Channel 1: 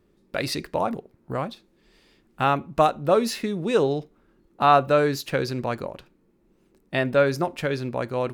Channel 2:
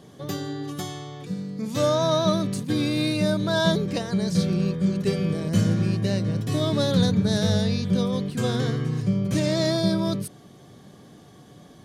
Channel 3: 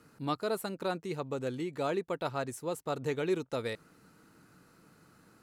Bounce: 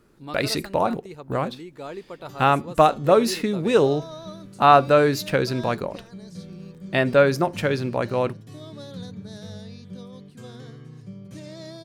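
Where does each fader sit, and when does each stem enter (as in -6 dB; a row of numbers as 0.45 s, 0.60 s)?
+3.0 dB, -16.5 dB, -3.5 dB; 0.00 s, 2.00 s, 0.00 s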